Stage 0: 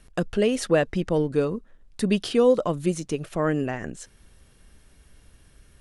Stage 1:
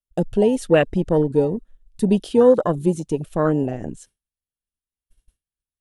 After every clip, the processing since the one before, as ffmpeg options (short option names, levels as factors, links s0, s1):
-af "aexciter=amount=2.3:drive=4.2:freq=2800,afwtdn=0.0501,agate=range=0.0224:threshold=0.00447:ratio=3:detection=peak,volume=1.78"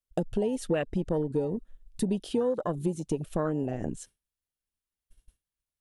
-af "acompressor=threshold=0.0501:ratio=5"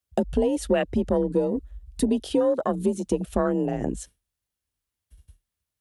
-af "afreqshift=36,volume=1.88"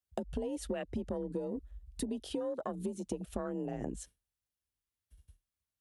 -af "acompressor=threshold=0.0562:ratio=6,volume=0.398"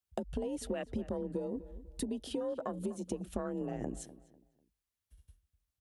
-filter_complex "[0:a]asplit=2[s0][s1];[s1]adelay=248,lowpass=f=2200:p=1,volume=0.158,asplit=2[s2][s3];[s3]adelay=248,lowpass=f=2200:p=1,volume=0.32,asplit=2[s4][s5];[s5]adelay=248,lowpass=f=2200:p=1,volume=0.32[s6];[s0][s2][s4][s6]amix=inputs=4:normalize=0"